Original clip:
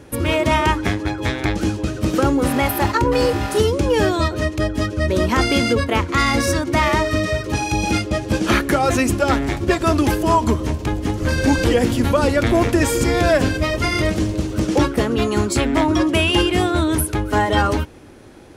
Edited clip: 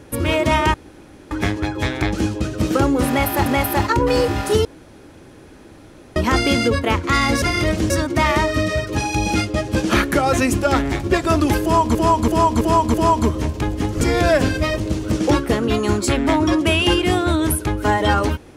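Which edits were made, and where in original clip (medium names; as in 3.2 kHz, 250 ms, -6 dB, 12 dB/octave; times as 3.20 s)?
0.74 s: insert room tone 0.57 s
2.51–2.89 s: loop, 2 plays
3.70–5.21 s: room tone
10.19–10.52 s: loop, 5 plays
11.26–13.01 s: delete
13.80–14.28 s: move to 6.47 s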